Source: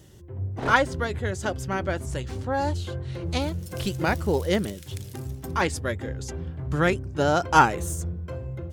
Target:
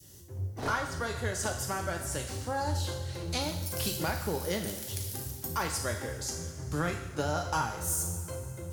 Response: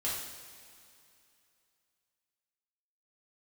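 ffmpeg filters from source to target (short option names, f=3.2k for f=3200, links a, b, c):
-filter_complex "[0:a]adynamicequalizer=threshold=0.0178:dfrequency=940:dqfactor=0.72:tfrequency=940:tqfactor=0.72:attack=5:release=100:ratio=0.375:range=3:mode=boostabove:tftype=bell,aexciter=amount=1.2:drive=9.4:freq=4.5k,acrossover=split=160[a][b];[b]acompressor=threshold=-24dB:ratio=6[c];[a][c]amix=inputs=2:normalize=0,asplit=2[d][e];[1:a]atrim=start_sample=2205,highshelf=f=2k:g=11[f];[e][f]afir=irnorm=-1:irlink=0,volume=-8dB[g];[d][g]amix=inputs=2:normalize=0,volume=-8.5dB"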